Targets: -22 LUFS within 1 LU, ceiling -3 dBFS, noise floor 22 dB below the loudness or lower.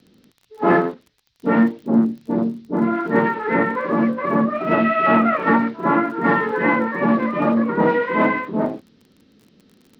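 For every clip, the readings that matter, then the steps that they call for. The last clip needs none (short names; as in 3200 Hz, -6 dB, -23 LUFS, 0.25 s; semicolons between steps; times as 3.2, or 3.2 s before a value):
ticks 31/s; loudness -19.0 LUFS; peak -4.5 dBFS; loudness target -22.0 LUFS
-> de-click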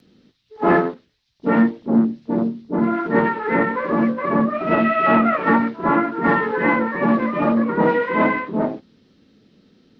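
ticks 0.10/s; loudness -19.0 LUFS; peak -4.5 dBFS; loudness target -22.0 LUFS
-> gain -3 dB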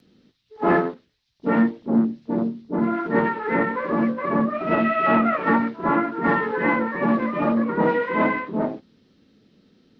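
loudness -22.0 LUFS; peak -7.5 dBFS; noise floor -65 dBFS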